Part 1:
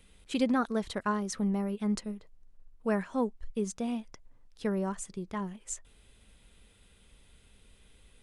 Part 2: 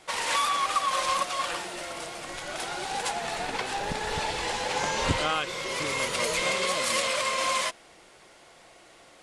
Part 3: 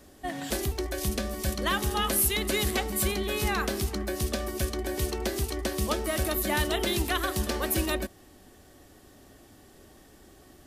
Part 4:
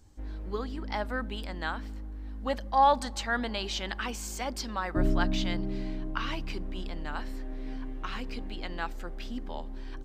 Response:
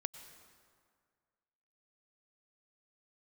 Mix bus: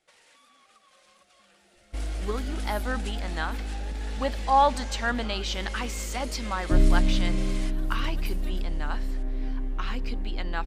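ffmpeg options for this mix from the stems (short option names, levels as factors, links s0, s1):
-filter_complex "[0:a]volume=0.126,asplit=2[s0][s1];[1:a]volume=0.708[s2];[2:a]adelay=550,volume=0.141[s3];[3:a]lowshelf=f=66:g=8.5,adelay=1750,volume=1.26[s4];[s1]apad=whole_len=498808[s5];[s3][s5]sidechaincompress=threshold=0.00158:ratio=8:attack=16:release=390[s6];[s0][s2][s6]amix=inputs=3:normalize=0,equalizer=f=1000:t=o:w=0.29:g=-12.5,acompressor=threshold=0.01:ratio=6,volume=1[s7];[s4][s7]amix=inputs=2:normalize=0,agate=range=0.141:threshold=0.0158:ratio=16:detection=peak"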